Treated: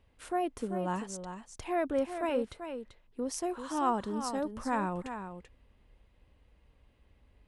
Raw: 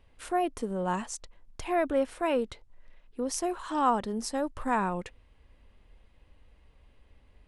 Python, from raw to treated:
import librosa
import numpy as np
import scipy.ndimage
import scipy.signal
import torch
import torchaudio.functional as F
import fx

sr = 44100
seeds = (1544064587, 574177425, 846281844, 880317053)

p1 = fx.highpass(x, sr, hz=48.0, slope=6)
p2 = fx.low_shelf(p1, sr, hz=380.0, db=4.0)
p3 = p2 + fx.echo_single(p2, sr, ms=388, db=-9.0, dry=0)
y = p3 * librosa.db_to_amplitude(-5.0)